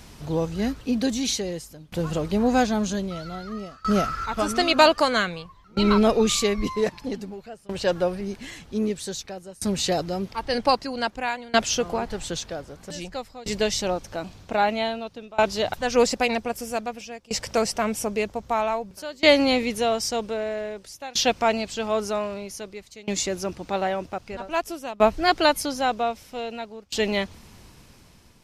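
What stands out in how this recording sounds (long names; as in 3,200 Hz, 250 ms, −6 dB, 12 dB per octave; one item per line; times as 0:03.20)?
tremolo saw down 0.52 Hz, depth 95%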